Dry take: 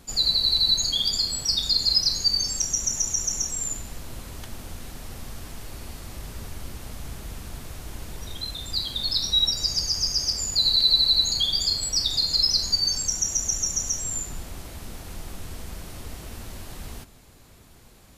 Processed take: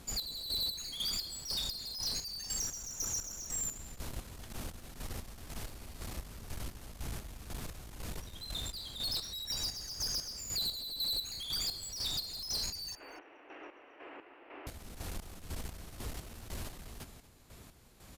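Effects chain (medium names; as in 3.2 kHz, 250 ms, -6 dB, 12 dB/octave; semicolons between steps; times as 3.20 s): 12.95–14.67 s: Chebyshev band-pass 290–2800 Hz, order 5; compression 1.5:1, threshold -30 dBFS, peak gain reduction 5.5 dB; valve stage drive 32 dB, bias 0.4; square tremolo 2 Hz, depth 60%, duty 40%; delay 237 ms -18.5 dB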